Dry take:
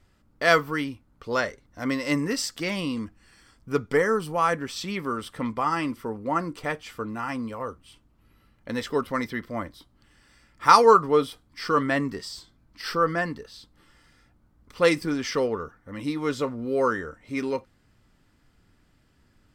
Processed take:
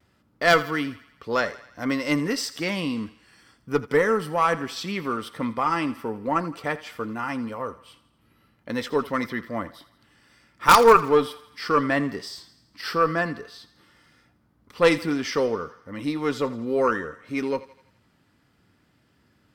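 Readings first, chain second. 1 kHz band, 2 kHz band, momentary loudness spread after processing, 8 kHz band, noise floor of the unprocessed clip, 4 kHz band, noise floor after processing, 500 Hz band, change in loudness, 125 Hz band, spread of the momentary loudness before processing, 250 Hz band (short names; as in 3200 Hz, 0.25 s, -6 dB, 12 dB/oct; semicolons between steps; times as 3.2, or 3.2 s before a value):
+1.0 dB, +2.0 dB, 13 LU, +1.0 dB, -64 dBFS, +2.0 dB, -65 dBFS, +1.5 dB, +1.5 dB, +0.5 dB, 14 LU, +1.5 dB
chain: HPF 100 Hz 12 dB/oct; bell 7500 Hz -4.5 dB 0.7 oct; in parallel at -7 dB: wrapped overs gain 6 dB; on the sum: added harmonics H 2 -13 dB, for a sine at -2.5 dBFS; on a send: thinning echo 83 ms, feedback 57%, high-pass 520 Hz, level -16 dB; on the sum: vibrato 0.59 Hz 23 cents; gain -1.5 dB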